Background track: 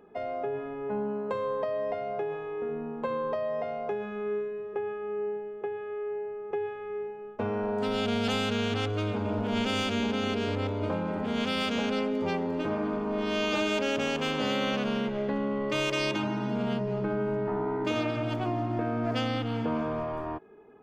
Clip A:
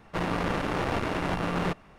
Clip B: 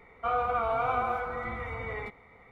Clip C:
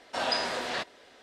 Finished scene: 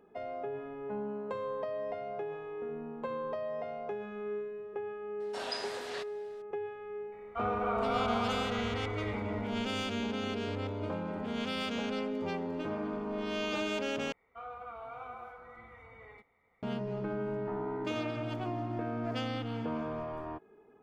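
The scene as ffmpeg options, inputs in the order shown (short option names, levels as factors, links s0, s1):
-filter_complex "[2:a]asplit=2[s0][s1];[0:a]volume=0.501[s2];[3:a]highshelf=f=9000:g=8[s3];[s0]aecho=1:1:279:0.596[s4];[s1]lowshelf=f=160:g=-4.5[s5];[s2]asplit=2[s6][s7];[s6]atrim=end=14.124[s8];[s5]atrim=end=2.51,asetpts=PTS-STARTPTS,volume=0.158[s9];[s7]atrim=start=16.626[s10];[s3]atrim=end=1.22,asetpts=PTS-STARTPTS,volume=0.316,afade=t=in:d=0.004:c=hsin,afade=t=out:st=1.216:d=0.004:c=hsin,adelay=5200[s11];[s4]atrim=end=2.51,asetpts=PTS-STARTPTS,volume=0.501,afade=t=in:d=0.004:c=hsin,afade=t=out:st=2.506:d=0.004:c=hsin,adelay=7120[s12];[s8][s9]acrossfade=d=0.004:c1=hsin:c2=hsin[s13];[s13][s10]acrossfade=d=0.004:c1=hsin:c2=hsin[s14];[s14][s11][s12]amix=inputs=3:normalize=0"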